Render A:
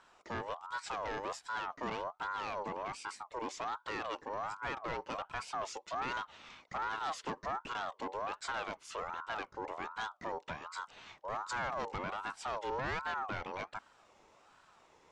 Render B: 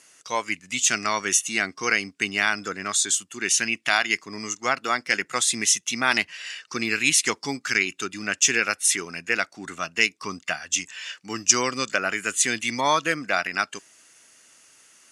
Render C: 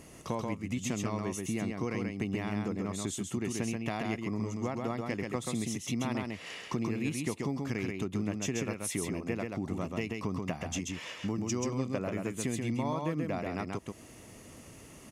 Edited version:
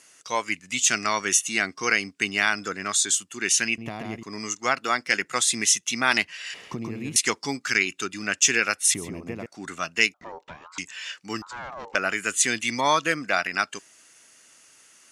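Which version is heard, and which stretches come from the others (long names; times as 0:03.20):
B
0:03.78–0:04.23: punch in from C
0:06.54–0:07.16: punch in from C
0:08.94–0:09.46: punch in from C
0:10.14–0:10.78: punch in from A
0:11.42–0:11.95: punch in from A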